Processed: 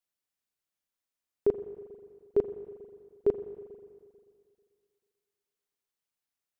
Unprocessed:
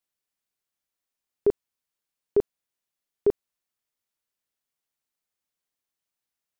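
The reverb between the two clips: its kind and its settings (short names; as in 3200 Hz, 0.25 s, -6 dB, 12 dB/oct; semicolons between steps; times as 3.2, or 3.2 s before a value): spring tank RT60 2.2 s, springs 40/44 ms, chirp 70 ms, DRR 10.5 dB; gain -3.5 dB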